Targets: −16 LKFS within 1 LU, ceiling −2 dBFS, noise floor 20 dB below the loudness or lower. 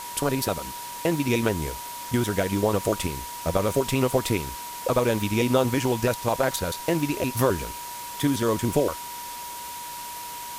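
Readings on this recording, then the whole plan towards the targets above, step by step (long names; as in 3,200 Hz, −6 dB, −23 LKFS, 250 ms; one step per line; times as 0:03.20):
interfering tone 960 Hz; level of the tone −36 dBFS; background noise floor −37 dBFS; target noise floor −46 dBFS; integrated loudness −26.0 LKFS; sample peak −8.0 dBFS; target loudness −16.0 LKFS
→ notch filter 960 Hz, Q 30
broadband denoise 9 dB, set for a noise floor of −37 dBFS
level +10 dB
brickwall limiter −2 dBFS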